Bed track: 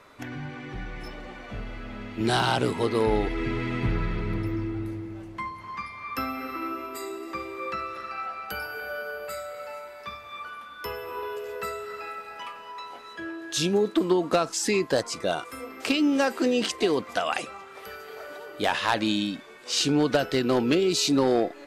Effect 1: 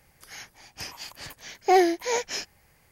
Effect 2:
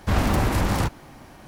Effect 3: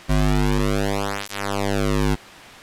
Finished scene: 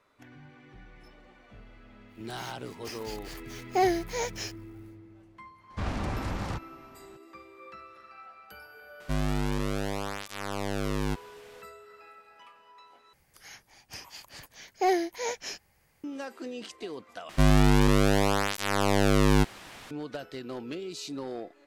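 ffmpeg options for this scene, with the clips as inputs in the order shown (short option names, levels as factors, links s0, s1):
-filter_complex "[1:a]asplit=2[s0][s1];[3:a]asplit=2[s2][s3];[0:a]volume=0.178[s4];[s0]acrusher=bits=8:dc=4:mix=0:aa=0.000001[s5];[2:a]lowpass=6700[s6];[s4]asplit=3[s7][s8][s9];[s7]atrim=end=13.134[s10];[s1]atrim=end=2.91,asetpts=PTS-STARTPTS,volume=0.501[s11];[s8]atrim=start=16.036:end=17.294[s12];[s3]atrim=end=2.62,asetpts=PTS-STARTPTS,volume=0.891[s13];[s9]atrim=start=19.906[s14];[s5]atrim=end=2.91,asetpts=PTS-STARTPTS,volume=0.531,afade=t=in:d=0.1,afade=t=out:st=2.81:d=0.1,adelay=2070[s15];[s6]atrim=end=1.47,asetpts=PTS-STARTPTS,volume=0.282,afade=t=in:d=0.004:c=hsin,afade=t=out:st=1.466:d=0.004:c=hsin,adelay=5700[s16];[s2]atrim=end=2.62,asetpts=PTS-STARTPTS,volume=0.335,afade=t=in:d=0.004:c=hsin,afade=t=out:st=2.616:d=0.004:c=hsin,adelay=9000[s17];[s10][s11]acrossfade=d=0.004:c1=hsin:c2=hsin[s18];[s18][s12]acrossfade=d=0.004:c1=hsin:c2=hsin[s19];[s19][s13]acrossfade=d=0.004:c1=hsin:c2=hsin[s20];[s20][s14]acrossfade=d=0.004:c1=hsin:c2=hsin[s21];[s21][s15][s16][s17]amix=inputs=4:normalize=0"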